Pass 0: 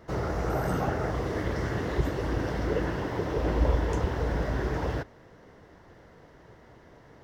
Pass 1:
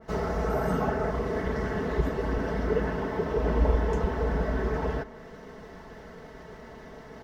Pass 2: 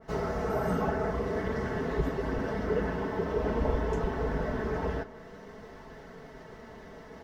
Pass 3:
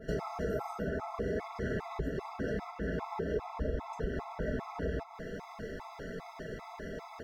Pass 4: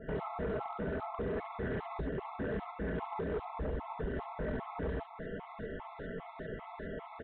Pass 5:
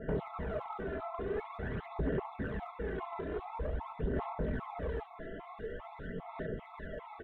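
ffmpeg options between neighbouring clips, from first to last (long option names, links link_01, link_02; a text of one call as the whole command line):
ffmpeg -i in.wav -af "aecho=1:1:4.6:0.7,areverse,acompressor=mode=upward:threshold=-36dB:ratio=2.5,areverse,adynamicequalizer=threshold=0.00316:dfrequency=2400:dqfactor=0.7:tfrequency=2400:tqfactor=0.7:attack=5:release=100:ratio=0.375:range=3.5:mode=cutabove:tftype=highshelf" out.wav
ffmpeg -i in.wav -af "flanger=delay=7.2:depth=3.5:regen=-50:speed=0.49:shape=sinusoidal,volume=2dB" out.wav
ffmpeg -i in.wav -af "acompressor=threshold=-37dB:ratio=6,afftfilt=real='re*gt(sin(2*PI*2.5*pts/sr)*(1-2*mod(floor(b*sr/1024/670),2)),0)':imag='im*gt(sin(2*PI*2.5*pts/sr)*(1-2*mod(floor(b*sr/1024/670),2)),0)':win_size=1024:overlap=0.75,volume=7dB" out.wav
ffmpeg -i in.wav -filter_complex "[0:a]aresample=8000,asoftclip=type=hard:threshold=-31.5dB,aresample=44100,acrossover=split=3000[link_01][link_02];[link_02]adelay=70[link_03];[link_01][link_03]amix=inputs=2:normalize=0" out.wav
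ffmpeg -i in.wav -af "aphaser=in_gain=1:out_gain=1:delay=3:decay=0.54:speed=0.47:type=sinusoidal,volume=-2.5dB" out.wav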